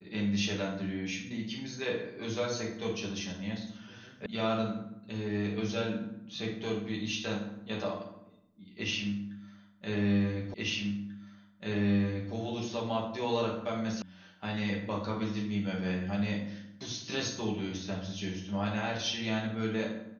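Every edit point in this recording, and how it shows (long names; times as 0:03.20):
0:04.26: cut off before it has died away
0:10.54: the same again, the last 1.79 s
0:14.02: cut off before it has died away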